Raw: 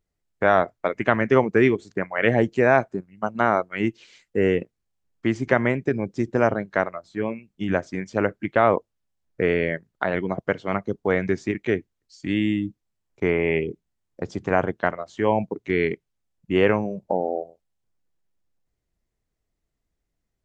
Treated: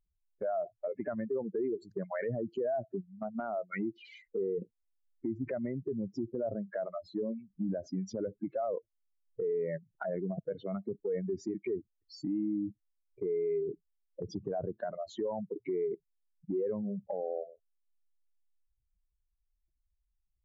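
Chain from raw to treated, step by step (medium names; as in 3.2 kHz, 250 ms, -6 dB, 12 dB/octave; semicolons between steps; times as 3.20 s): spectral contrast enhancement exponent 3; compression 3:1, threshold -32 dBFS, peak gain reduction 13.5 dB; peak limiter -26.5 dBFS, peak gain reduction 9 dB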